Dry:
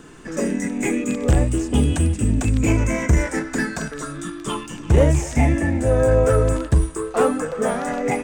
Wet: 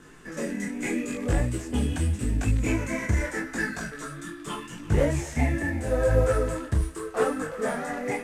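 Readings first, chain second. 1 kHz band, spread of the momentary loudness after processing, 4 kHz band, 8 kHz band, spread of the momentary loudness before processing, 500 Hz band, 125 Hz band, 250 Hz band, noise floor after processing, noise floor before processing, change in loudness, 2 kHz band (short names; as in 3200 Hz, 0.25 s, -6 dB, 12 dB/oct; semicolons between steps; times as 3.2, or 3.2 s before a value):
-7.0 dB, 12 LU, -6.0 dB, -8.0 dB, 12 LU, -7.0 dB, -8.0 dB, -8.0 dB, -43 dBFS, -36 dBFS, -7.0 dB, -3.5 dB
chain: CVSD 64 kbps; bell 1800 Hz +5.5 dB 0.71 oct; detuned doubles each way 28 cents; gain -4 dB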